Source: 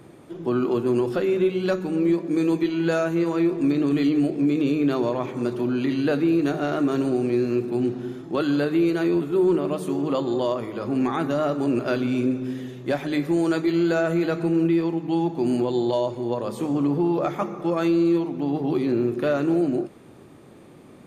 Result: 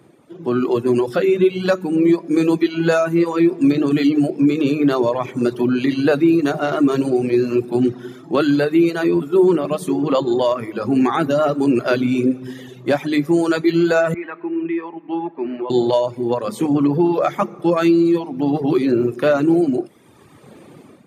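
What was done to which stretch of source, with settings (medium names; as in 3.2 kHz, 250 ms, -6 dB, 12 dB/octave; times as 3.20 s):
14.14–15.70 s: cabinet simulation 470–2200 Hz, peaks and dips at 490 Hz -9 dB, 720 Hz -10 dB, 1.4 kHz -7 dB
whole clip: high-pass 94 Hz; reverb removal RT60 1.3 s; level rider gain up to 12.5 dB; trim -3 dB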